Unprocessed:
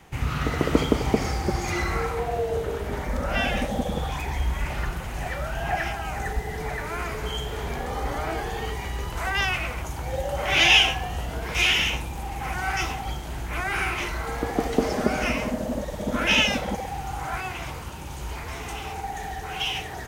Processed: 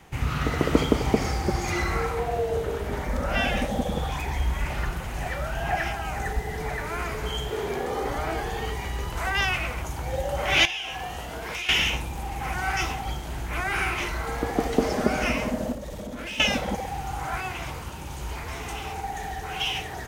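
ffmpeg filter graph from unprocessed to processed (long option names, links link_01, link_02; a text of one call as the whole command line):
ffmpeg -i in.wav -filter_complex "[0:a]asettb=1/sr,asplit=3[link_01][link_02][link_03];[link_01]atrim=end=7.504[link_04];[link_02]atrim=start=7.5:end=8.09,asetpts=PTS-STARTPTS,afade=type=in:duration=0.004:curve=qsin,afade=type=out:start_time=0.586:duration=0.004:curve=qsin,highpass=frequency=150:poles=1,equalizer=frequency=390:width=2.5:gain=9.5[link_05];[link_03]atrim=start=8.086[link_06];[link_04][link_05]acrossfade=duration=0.004:curve1=hsin:curve2=qsin[link_07];[link_07][link_06]acrossfade=duration=0.004:curve1=qsin:curve2=hsin,asettb=1/sr,asplit=3[link_08][link_09][link_10];[link_08]atrim=end=10.654[link_11];[link_09]atrim=start=10.65:end=11.69,asetpts=PTS-STARTPTS,afade=type=in:duration=0.004:curve=qsin,afade=type=out:start_time=1.036:duration=0.004:curve=qsin,lowshelf=frequency=190:gain=-10,acompressor=threshold=-28dB:ratio=16:attack=3.2:release=140:knee=1:detection=peak[link_12];[link_10]atrim=start=11.686[link_13];[link_11][link_12]acrossfade=duration=0.004:curve1=hsin:curve2=qsin[link_14];[link_14][link_13]acrossfade=duration=0.004:curve1=qsin:curve2=hsin,asettb=1/sr,asplit=3[link_15][link_16][link_17];[link_15]atrim=end=15.724[link_18];[link_16]atrim=start=15.72:end=16.4,asetpts=PTS-STARTPTS,afade=type=in:duration=0.004:curve=qsin,afade=type=out:start_time=0.676:duration=0.004:curve=qsin,equalizer=frequency=1200:width=1.4:gain=-8,acompressor=threshold=-29dB:ratio=10:attack=3.2:release=140:knee=1:detection=peak,volume=31dB,asoftclip=hard,volume=-31dB[link_19];[link_17]atrim=start=16.396[link_20];[link_18][link_19]acrossfade=duration=0.004:curve1=hsin:curve2=qsin[link_21];[link_21][link_20]acrossfade=duration=0.004:curve1=qsin:curve2=hsin" out.wav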